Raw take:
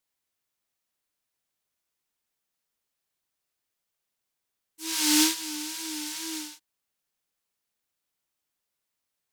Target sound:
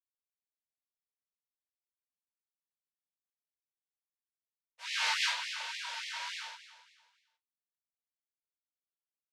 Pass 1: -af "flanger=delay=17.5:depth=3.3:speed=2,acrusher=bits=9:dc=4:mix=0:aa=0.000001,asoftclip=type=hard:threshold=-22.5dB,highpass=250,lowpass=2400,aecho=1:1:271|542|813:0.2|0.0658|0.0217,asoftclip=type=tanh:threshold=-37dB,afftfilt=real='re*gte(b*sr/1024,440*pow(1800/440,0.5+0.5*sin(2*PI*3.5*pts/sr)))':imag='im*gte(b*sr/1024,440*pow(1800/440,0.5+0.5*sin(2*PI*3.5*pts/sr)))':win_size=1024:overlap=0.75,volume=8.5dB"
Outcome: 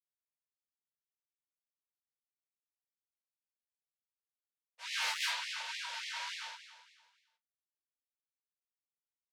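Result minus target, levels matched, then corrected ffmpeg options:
soft clipping: distortion +11 dB
-af "flanger=delay=17.5:depth=3.3:speed=2,acrusher=bits=9:dc=4:mix=0:aa=0.000001,asoftclip=type=hard:threshold=-22.5dB,highpass=250,lowpass=2400,aecho=1:1:271|542|813:0.2|0.0658|0.0217,asoftclip=type=tanh:threshold=-25.5dB,afftfilt=real='re*gte(b*sr/1024,440*pow(1800/440,0.5+0.5*sin(2*PI*3.5*pts/sr)))':imag='im*gte(b*sr/1024,440*pow(1800/440,0.5+0.5*sin(2*PI*3.5*pts/sr)))':win_size=1024:overlap=0.75,volume=8.5dB"

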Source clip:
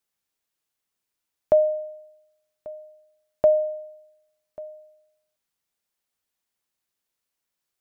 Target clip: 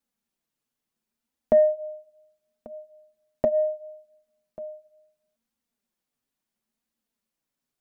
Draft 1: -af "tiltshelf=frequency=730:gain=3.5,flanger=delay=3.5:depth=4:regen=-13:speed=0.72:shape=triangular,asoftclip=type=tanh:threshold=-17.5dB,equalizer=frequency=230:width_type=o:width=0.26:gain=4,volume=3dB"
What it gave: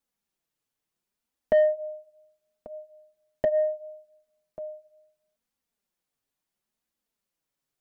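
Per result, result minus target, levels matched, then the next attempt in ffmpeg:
soft clipping: distortion +13 dB; 250 Hz band −6.5 dB
-af "tiltshelf=frequency=730:gain=3.5,flanger=delay=3.5:depth=4:regen=-13:speed=0.72:shape=triangular,asoftclip=type=tanh:threshold=-9.5dB,equalizer=frequency=230:width_type=o:width=0.26:gain=4,volume=3dB"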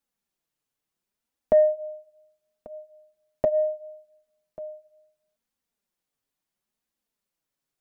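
250 Hz band −5.5 dB
-af "tiltshelf=frequency=730:gain=3.5,flanger=delay=3.5:depth=4:regen=-13:speed=0.72:shape=triangular,asoftclip=type=tanh:threshold=-9.5dB,equalizer=frequency=230:width_type=o:width=0.26:gain=14.5,volume=3dB"

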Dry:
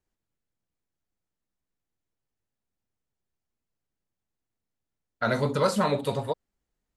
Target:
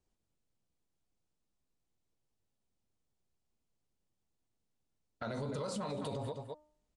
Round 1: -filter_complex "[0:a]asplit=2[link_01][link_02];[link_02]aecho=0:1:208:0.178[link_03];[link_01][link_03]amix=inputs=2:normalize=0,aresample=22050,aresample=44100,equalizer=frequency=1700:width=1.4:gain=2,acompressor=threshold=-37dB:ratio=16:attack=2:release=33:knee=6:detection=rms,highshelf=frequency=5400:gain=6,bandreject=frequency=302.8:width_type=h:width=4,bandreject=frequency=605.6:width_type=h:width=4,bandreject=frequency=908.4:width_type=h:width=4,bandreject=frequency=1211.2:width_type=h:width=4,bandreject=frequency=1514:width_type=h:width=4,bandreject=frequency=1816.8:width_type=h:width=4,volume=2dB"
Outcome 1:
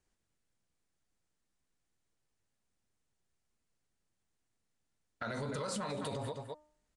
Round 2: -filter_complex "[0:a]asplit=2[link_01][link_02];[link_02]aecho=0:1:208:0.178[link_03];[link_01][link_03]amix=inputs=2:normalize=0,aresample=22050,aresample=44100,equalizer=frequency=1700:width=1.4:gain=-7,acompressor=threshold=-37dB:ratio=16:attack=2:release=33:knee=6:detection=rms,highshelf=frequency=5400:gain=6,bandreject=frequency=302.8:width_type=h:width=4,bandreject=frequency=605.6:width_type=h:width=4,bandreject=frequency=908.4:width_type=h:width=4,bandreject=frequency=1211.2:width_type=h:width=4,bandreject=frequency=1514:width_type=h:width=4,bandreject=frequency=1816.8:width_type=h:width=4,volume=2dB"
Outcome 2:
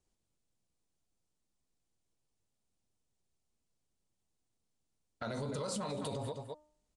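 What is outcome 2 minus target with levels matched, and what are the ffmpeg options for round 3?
8,000 Hz band +5.0 dB
-filter_complex "[0:a]asplit=2[link_01][link_02];[link_02]aecho=0:1:208:0.178[link_03];[link_01][link_03]amix=inputs=2:normalize=0,aresample=22050,aresample=44100,equalizer=frequency=1700:width=1.4:gain=-7,acompressor=threshold=-37dB:ratio=16:attack=2:release=33:knee=6:detection=rms,highshelf=frequency=5400:gain=-2,bandreject=frequency=302.8:width_type=h:width=4,bandreject=frequency=605.6:width_type=h:width=4,bandreject=frequency=908.4:width_type=h:width=4,bandreject=frequency=1211.2:width_type=h:width=4,bandreject=frequency=1514:width_type=h:width=4,bandreject=frequency=1816.8:width_type=h:width=4,volume=2dB"

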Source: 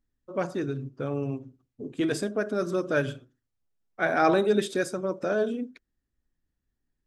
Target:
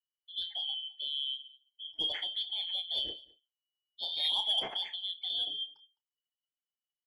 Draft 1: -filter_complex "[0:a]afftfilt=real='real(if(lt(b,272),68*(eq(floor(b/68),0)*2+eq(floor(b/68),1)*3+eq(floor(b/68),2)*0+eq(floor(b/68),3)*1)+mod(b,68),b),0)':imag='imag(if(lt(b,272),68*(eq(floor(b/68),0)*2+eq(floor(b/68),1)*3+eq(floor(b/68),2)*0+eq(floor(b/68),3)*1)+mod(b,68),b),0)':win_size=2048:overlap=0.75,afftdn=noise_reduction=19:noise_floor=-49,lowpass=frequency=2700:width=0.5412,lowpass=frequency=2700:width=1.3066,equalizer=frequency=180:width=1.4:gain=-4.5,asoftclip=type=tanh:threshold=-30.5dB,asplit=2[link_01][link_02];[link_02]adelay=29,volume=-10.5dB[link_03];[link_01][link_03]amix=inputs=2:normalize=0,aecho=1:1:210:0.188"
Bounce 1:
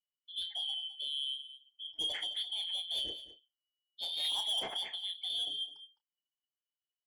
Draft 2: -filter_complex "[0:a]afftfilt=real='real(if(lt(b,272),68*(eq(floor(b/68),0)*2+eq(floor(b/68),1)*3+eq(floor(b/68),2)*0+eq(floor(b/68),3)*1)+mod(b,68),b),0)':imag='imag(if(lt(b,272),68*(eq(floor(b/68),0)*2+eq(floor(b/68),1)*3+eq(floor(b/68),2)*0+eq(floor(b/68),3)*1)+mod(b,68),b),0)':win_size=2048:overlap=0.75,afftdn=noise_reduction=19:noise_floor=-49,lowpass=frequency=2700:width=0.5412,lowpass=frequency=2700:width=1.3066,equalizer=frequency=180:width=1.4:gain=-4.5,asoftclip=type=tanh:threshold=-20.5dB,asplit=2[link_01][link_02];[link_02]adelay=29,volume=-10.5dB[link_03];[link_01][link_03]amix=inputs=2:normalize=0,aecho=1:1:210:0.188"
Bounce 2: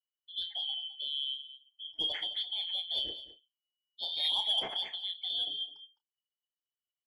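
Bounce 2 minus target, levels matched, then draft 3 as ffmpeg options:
echo-to-direct +9 dB
-filter_complex "[0:a]afftfilt=real='real(if(lt(b,272),68*(eq(floor(b/68),0)*2+eq(floor(b/68),1)*3+eq(floor(b/68),2)*0+eq(floor(b/68),3)*1)+mod(b,68),b),0)':imag='imag(if(lt(b,272),68*(eq(floor(b/68),0)*2+eq(floor(b/68),1)*3+eq(floor(b/68),2)*0+eq(floor(b/68),3)*1)+mod(b,68),b),0)':win_size=2048:overlap=0.75,afftdn=noise_reduction=19:noise_floor=-49,lowpass=frequency=2700:width=0.5412,lowpass=frequency=2700:width=1.3066,equalizer=frequency=180:width=1.4:gain=-4.5,asoftclip=type=tanh:threshold=-20.5dB,asplit=2[link_01][link_02];[link_02]adelay=29,volume=-10.5dB[link_03];[link_01][link_03]amix=inputs=2:normalize=0,aecho=1:1:210:0.0668"

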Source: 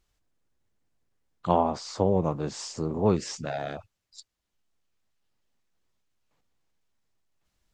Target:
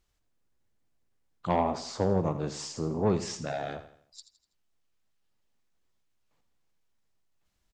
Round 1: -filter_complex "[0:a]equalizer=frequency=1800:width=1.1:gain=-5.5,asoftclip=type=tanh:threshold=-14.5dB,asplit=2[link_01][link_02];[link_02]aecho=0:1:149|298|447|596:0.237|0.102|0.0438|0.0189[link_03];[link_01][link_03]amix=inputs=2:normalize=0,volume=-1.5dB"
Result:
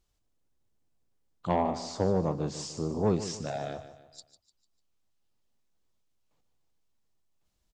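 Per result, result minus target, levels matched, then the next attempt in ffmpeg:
echo 67 ms late; 2,000 Hz band −3.0 dB
-filter_complex "[0:a]equalizer=frequency=1800:width=1.1:gain=-5.5,asoftclip=type=tanh:threshold=-14.5dB,asplit=2[link_01][link_02];[link_02]aecho=0:1:82|164|246|328:0.237|0.102|0.0438|0.0189[link_03];[link_01][link_03]amix=inputs=2:normalize=0,volume=-1.5dB"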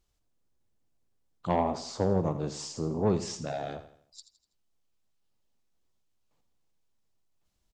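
2,000 Hz band −3.0 dB
-filter_complex "[0:a]asoftclip=type=tanh:threshold=-14.5dB,asplit=2[link_01][link_02];[link_02]aecho=0:1:82|164|246|328:0.237|0.102|0.0438|0.0189[link_03];[link_01][link_03]amix=inputs=2:normalize=0,volume=-1.5dB"

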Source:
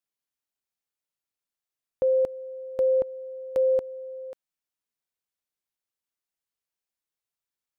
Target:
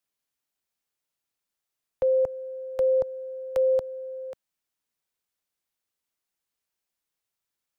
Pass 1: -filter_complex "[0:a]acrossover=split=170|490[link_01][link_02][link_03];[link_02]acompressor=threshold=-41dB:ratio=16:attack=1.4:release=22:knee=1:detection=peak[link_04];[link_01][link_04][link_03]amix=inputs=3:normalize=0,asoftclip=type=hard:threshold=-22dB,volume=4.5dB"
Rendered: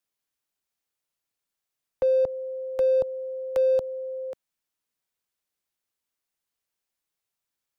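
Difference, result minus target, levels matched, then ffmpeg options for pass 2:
downward compressor: peak gain reduction −11 dB
-filter_complex "[0:a]acrossover=split=170|490[link_01][link_02][link_03];[link_02]acompressor=threshold=-52.5dB:ratio=16:attack=1.4:release=22:knee=1:detection=peak[link_04];[link_01][link_04][link_03]amix=inputs=3:normalize=0,asoftclip=type=hard:threshold=-22dB,volume=4.5dB"

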